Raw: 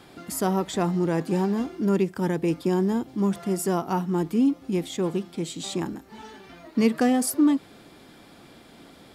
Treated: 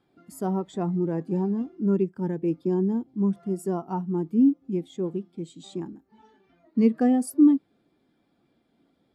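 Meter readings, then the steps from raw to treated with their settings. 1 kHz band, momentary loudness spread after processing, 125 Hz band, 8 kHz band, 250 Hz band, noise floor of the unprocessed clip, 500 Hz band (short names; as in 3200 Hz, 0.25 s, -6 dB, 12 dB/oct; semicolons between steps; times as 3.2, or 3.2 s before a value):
-5.5 dB, 15 LU, -1.5 dB, under -10 dB, +0.5 dB, -51 dBFS, -2.5 dB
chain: spectral expander 1.5:1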